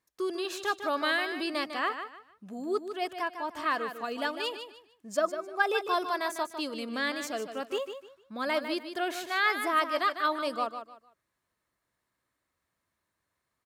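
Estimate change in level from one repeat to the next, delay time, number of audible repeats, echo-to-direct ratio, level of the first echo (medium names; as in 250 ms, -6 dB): -11.5 dB, 151 ms, 3, -8.5 dB, -9.0 dB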